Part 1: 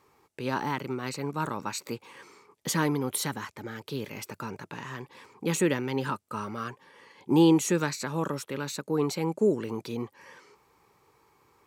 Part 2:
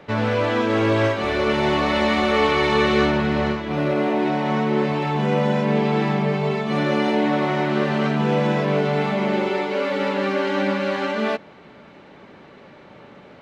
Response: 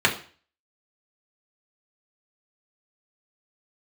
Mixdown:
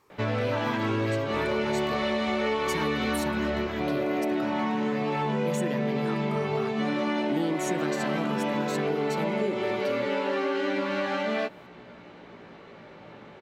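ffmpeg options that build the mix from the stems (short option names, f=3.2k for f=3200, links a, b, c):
-filter_complex "[0:a]volume=-0.5dB[a];[1:a]flanger=delay=16.5:depth=2.2:speed=0.26,adelay=100,volume=1dB[b];[a][b]amix=inputs=2:normalize=0,acompressor=threshold=-24dB:ratio=6"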